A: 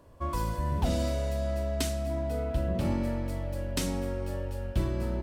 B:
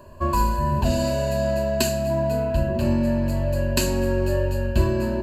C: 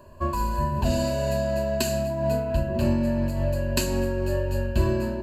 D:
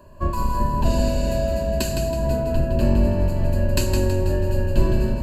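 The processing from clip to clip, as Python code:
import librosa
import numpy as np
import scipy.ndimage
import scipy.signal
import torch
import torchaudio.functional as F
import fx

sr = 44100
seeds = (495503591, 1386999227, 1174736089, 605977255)

y1 = fx.ripple_eq(x, sr, per_octave=1.4, db=15)
y1 = fx.rider(y1, sr, range_db=10, speed_s=0.5)
y1 = y1 * librosa.db_to_amplitude(6.0)
y2 = fx.am_noise(y1, sr, seeds[0], hz=5.7, depth_pct=55)
y3 = fx.octave_divider(y2, sr, octaves=2, level_db=4.0)
y3 = fx.echo_feedback(y3, sr, ms=162, feedback_pct=42, wet_db=-6.0)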